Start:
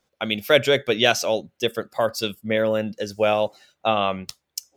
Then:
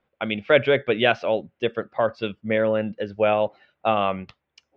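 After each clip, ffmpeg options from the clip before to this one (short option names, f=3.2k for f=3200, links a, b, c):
-af "lowpass=f=2.8k:w=0.5412,lowpass=f=2.8k:w=1.3066"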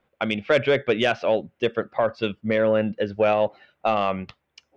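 -af "acontrast=74,alimiter=limit=-8dB:level=0:latency=1:release=258,volume=-3dB"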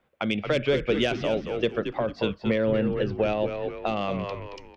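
-filter_complex "[0:a]asplit=2[a][b];[b]asplit=4[c][d][e][f];[c]adelay=225,afreqshift=-88,volume=-9dB[g];[d]adelay=450,afreqshift=-176,volume=-17.9dB[h];[e]adelay=675,afreqshift=-264,volume=-26.7dB[i];[f]adelay=900,afreqshift=-352,volume=-35.6dB[j];[g][h][i][j]amix=inputs=4:normalize=0[k];[a][k]amix=inputs=2:normalize=0,acrossover=split=430|3000[l][m][n];[m]acompressor=threshold=-29dB:ratio=6[o];[l][o][n]amix=inputs=3:normalize=0"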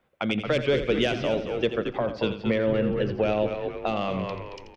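-af "aecho=1:1:85|170|255:0.282|0.0789|0.0221"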